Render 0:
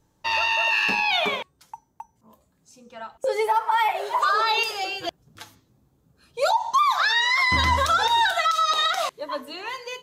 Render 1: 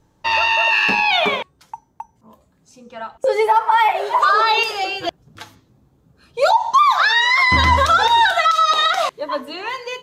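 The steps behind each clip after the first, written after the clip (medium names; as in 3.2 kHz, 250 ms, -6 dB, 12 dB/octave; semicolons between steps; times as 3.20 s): treble shelf 5.8 kHz -9 dB; trim +7 dB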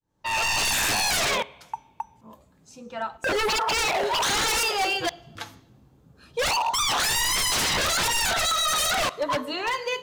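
fade-in on the opening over 0.69 s; two-slope reverb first 0.76 s, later 1.9 s, from -18 dB, DRR 19.5 dB; wavefolder -19 dBFS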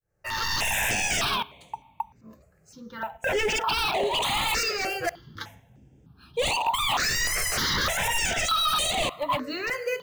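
in parallel at -12 dB: sample-rate reducer 15 kHz, jitter 0%; on the sum: stepped phaser 3.3 Hz 960–5300 Hz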